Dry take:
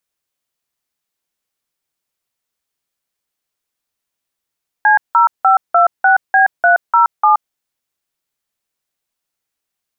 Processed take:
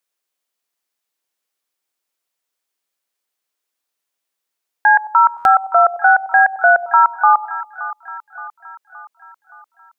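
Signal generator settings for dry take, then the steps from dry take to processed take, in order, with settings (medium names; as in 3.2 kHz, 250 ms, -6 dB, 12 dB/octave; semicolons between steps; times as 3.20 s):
DTMF "C0526B307", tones 124 ms, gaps 174 ms, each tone -9.5 dBFS
high-pass 290 Hz 12 dB/octave; two-band feedback delay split 910 Hz, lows 96 ms, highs 571 ms, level -14 dB; buffer glitch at 5.37 s, samples 512, times 6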